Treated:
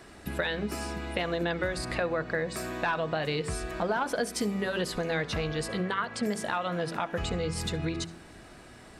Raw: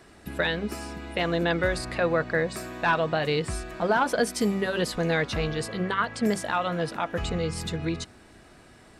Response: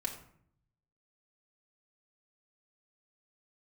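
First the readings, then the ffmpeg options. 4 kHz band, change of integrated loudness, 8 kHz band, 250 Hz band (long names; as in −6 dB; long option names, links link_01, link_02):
−2.5 dB, −4.0 dB, −1.5 dB, −4.0 dB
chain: -filter_complex "[0:a]bandreject=frequency=55.73:width_type=h:width=4,bandreject=frequency=111.46:width_type=h:width=4,bandreject=frequency=167.19:width_type=h:width=4,bandreject=frequency=222.92:width_type=h:width=4,bandreject=frequency=278.65:width_type=h:width=4,bandreject=frequency=334.38:width_type=h:width=4,bandreject=frequency=390.11:width_type=h:width=4,bandreject=frequency=445.84:width_type=h:width=4,acompressor=threshold=-31dB:ratio=3,asplit=2[link_01][link_02];[1:a]atrim=start_sample=2205,adelay=67[link_03];[link_02][link_03]afir=irnorm=-1:irlink=0,volume=-21dB[link_04];[link_01][link_04]amix=inputs=2:normalize=0,volume=2.5dB"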